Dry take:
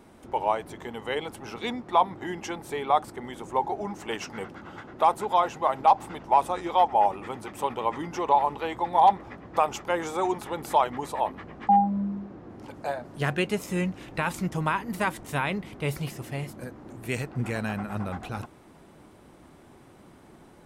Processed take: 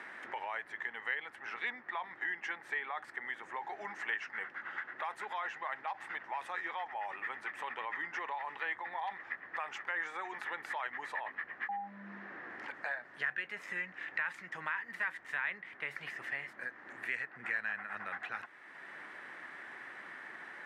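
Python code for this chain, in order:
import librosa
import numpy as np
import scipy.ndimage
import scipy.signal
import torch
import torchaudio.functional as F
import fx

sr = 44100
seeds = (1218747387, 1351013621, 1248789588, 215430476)

p1 = fx.over_compress(x, sr, threshold_db=-29.0, ratio=-1.0)
p2 = x + F.gain(torch.from_numpy(p1), 1.5).numpy()
p3 = fx.bandpass_q(p2, sr, hz=1800.0, q=7.0)
y = fx.band_squash(p3, sr, depth_pct=70)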